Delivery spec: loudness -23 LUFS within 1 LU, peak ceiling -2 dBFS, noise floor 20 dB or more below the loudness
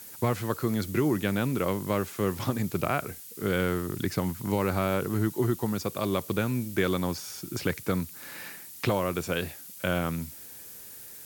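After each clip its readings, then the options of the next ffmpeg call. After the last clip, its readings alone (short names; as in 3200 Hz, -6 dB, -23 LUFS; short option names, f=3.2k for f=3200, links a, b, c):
noise floor -45 dBFS; noise floor target -50 dBFS; loudness -29.5 LUFS; peak -11.5 dBFS; loudness target -23.0 LUFS
-> -af "afftdn=nr=6:nf=-45"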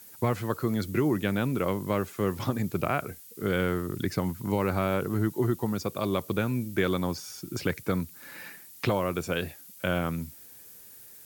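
noise floor -50 dBFS; loudness -29.5 LUFS; peak -12.0 dBFS; loudness target -23.0 LUFS
-> -af "volume=6.5dB"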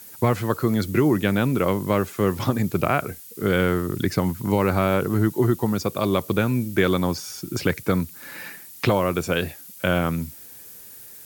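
loudness -23.0 LUFS; peak -5.5 dBFS; noise floor -43 dBFS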